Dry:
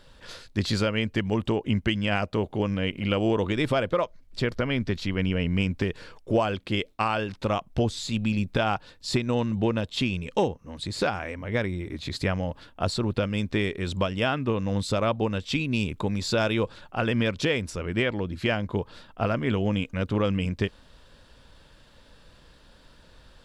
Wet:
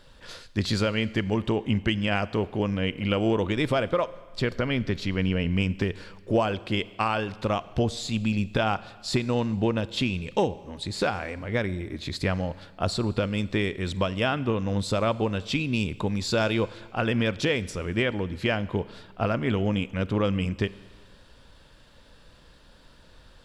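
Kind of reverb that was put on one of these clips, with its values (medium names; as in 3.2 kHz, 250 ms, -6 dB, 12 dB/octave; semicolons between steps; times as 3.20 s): Schroeder reverb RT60 1.5 s, combs from 32 ms, DRR 17.5 dB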